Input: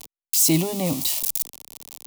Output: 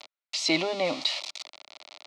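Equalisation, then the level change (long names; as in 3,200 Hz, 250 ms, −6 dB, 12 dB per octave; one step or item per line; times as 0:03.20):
loudspeaker in its box 450–4,600 Hz, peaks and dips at 610 Hz +6 dB, 1,400 Hz +9 dB, 2,200 Hz +7 dB, 4,100 Hz +5 dB
0.0 dB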